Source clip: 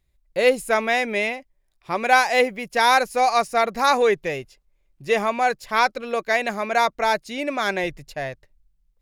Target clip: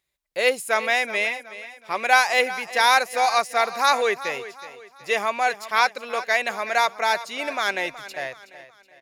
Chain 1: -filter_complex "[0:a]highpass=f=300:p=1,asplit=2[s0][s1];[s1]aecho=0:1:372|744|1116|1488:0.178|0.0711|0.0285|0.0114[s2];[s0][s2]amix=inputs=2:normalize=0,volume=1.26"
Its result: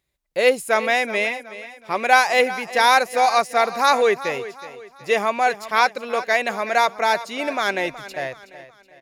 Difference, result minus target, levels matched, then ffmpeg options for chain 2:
250 Hz band +5.5 dB
-filter_complex "[0:a]highpass=f=940:p=1,asplit=2[s0][s1];[s1]aecho=0:1:372|744|1116|1488:0.178|0.0711|0.0285|0.0114[s2];[s0][s2]amix=inputs=2:normalize=0,volume=1.26"

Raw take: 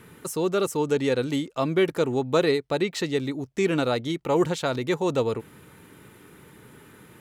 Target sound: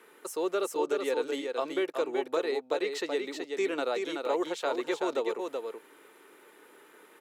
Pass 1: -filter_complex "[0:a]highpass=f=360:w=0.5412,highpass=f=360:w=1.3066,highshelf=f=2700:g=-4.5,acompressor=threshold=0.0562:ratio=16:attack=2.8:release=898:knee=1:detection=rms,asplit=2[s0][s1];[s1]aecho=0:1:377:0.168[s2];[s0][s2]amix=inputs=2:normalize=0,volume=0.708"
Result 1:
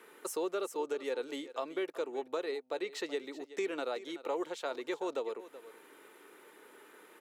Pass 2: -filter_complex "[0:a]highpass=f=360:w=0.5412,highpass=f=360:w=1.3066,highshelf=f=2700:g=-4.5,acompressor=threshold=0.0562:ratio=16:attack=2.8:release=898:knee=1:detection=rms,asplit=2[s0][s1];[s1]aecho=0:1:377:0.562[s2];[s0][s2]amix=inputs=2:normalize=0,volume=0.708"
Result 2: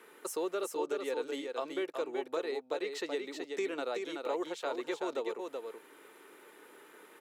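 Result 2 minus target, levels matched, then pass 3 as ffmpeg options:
compression: peak gain reduction +5.5 dB
-filter_complex "[0:a]highpass=f=360:w=0.5412,highpass=f=360:w=1.3066,highshelf=f=2700:g=-4.5,acompressor=threshold=0.112:ratio=16:attack=2.8:release=898:knee=1:detection=rms,asplit=2[s0][s1];[s1]aecho=0:1:377:0.562[s2];[s0][s2]amix=inputs=2:normalize=0,volume=0.708"

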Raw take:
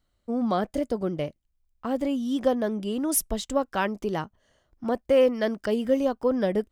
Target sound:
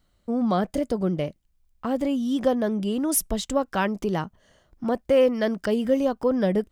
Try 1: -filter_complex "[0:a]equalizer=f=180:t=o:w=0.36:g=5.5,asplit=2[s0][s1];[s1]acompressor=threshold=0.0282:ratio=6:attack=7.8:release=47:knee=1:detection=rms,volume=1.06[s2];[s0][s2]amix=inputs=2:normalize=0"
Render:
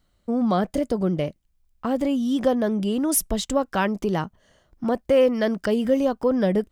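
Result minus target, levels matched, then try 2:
compression: peak gain reduction -7.5 dB
-filter_complex "[0:a]equalizer=f=180:t=o:w=0.36:g=5.5,asplit=2[s0][s1];[s1]acompressor=threshold=0.01:ratio=6:attack=7.8:release=47:knee=1:detection=rms,volume=1.06[s2];[s0][s2]amix=inputs=2:normalize=0"

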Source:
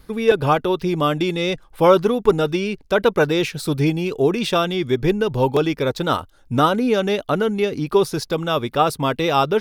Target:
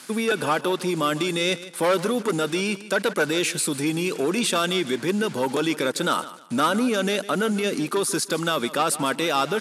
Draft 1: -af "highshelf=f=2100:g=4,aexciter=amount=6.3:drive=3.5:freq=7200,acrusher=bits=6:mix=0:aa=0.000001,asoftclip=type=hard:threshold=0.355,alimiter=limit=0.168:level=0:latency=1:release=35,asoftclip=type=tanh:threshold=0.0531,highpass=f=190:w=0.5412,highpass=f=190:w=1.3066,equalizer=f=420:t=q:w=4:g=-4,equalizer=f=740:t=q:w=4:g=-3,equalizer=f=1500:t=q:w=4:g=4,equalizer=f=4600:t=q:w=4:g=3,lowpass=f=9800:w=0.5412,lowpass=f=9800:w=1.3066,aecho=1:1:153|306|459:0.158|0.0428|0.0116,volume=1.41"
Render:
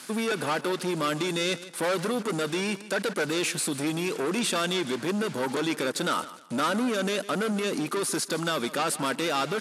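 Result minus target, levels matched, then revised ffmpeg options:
saturation: distortion +12 dB
-af "highshelf=f=2100:g=4,aexciter=amount=6.3:drive=3.5:freq=7200,acrusher=bits=6:mix=0:aa=0.000001,asoftclip=type=hard:threshold=0.355,alimiter=limit=0.168:level=0:latency=1:release=35,asoftclip=type=tanh:threshold=0.168,highpass=f=190:w=0.5412,highpass=f=190:w=1.3066,equalizer=f=420:t=q:w=4:g=-4,equalizer=f=740:t=q:w=4:g=-3,equalizer=f=1500:t=q:w=4:g=4,equalizer=f=4600:t=q:w=4:g=3,lowpass=f=9800:w=0.5412,lowpass=f=9800:w=1.3066,aecho=1:1:153|306|459:0.158|0.0428|0.0116,volume=1.41"

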